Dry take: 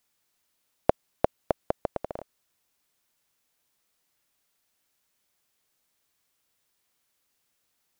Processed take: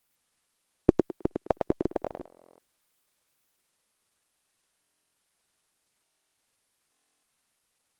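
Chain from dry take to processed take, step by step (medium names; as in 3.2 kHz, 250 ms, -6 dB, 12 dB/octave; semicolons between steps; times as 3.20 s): pitch shift switched off and on -9.5 st, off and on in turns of 234 ms; thinning echo 105 ms, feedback 25%, high-pass 220 Hz, level -3.5 dB; buffer glitch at 2.27/4.81/6.03/6.91 s, samples 1024, times 13; trim +1 dB; Opus 24 kbps 48 kHz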